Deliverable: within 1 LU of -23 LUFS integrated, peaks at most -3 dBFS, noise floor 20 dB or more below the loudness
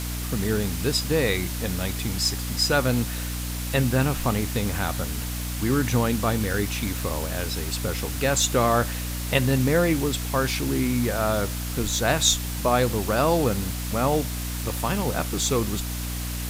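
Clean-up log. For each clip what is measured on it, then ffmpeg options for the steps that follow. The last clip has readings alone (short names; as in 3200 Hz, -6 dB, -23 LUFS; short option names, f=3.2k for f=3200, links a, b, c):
hum 60 Hz; harmonics up to 300 Hz; hum level -28 dBFS; noise floor -30 dBFS; noise floor target -45 dBFS; loudness -24.5 LUFS; peak -5.5 dBFS; loudness target -23.0 LUFS
-> -af "bandreject=f=60:t=h:w=4,bandreject=f=120:t=h:w=4,bandreject=f=180:t=h:w=4,bandreject=f=240:t=h:w=4,bandreject=f=300:t=h:w=4"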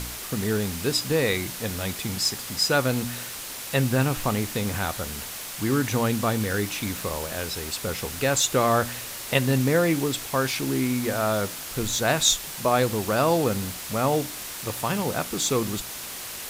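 hum none; noise floor -36 dBFS; noise floor target -45 dBFS
-> -af "afftdn=nr=9:nf=-36"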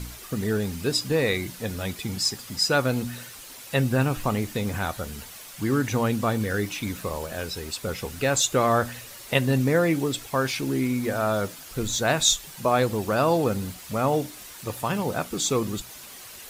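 noise floor -43 dBFS; noise floor target -46 dBFS
-> -af "afftdn=nr=6:nf=-43"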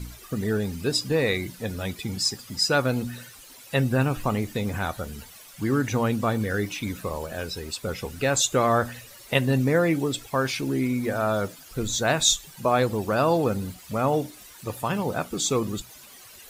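noise floor -47 dBFS; loudness -25.5 LUFS; peak -6.0 dBFS; loudness target -23.0 LUFS
-> -af "volume=2.5dB"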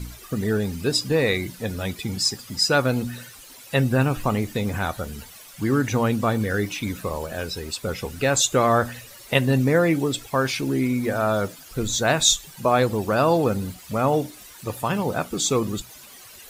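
loudness -23.0 LUFS; peak -3.5 dBFS; noise floor -45 dBFS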